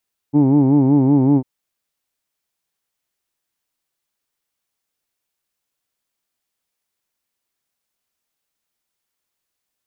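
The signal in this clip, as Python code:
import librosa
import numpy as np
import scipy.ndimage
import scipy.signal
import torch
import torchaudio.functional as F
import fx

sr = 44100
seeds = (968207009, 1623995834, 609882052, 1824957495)

y = fx.vowel(sr, seeds[0], length_s=1.1, word="who'd", hz=140.0, glide_st=-0.5, vibrato_hz=5.3, vibrato_st=1.1)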